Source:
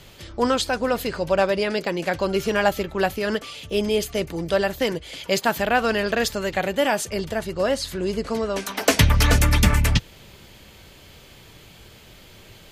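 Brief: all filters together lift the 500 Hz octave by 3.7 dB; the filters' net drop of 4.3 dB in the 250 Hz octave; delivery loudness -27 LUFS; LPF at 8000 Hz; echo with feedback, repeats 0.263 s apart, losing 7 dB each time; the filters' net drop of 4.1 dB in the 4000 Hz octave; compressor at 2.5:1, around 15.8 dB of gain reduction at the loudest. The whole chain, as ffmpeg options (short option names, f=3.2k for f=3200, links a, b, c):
-af "lowpass=8k,equalizer=f=250:t=o:g=-8,equalizer=f=500:t=o:g=6.5,equalizer=f=4k:t=o:g=-5.5,acompressor=threshold=-37dB:ratio=2.5,aecho=1:1:263|526|789|1052|1315:0.447|0.201|0.0905|0.0407|0.0183,volume=7dB"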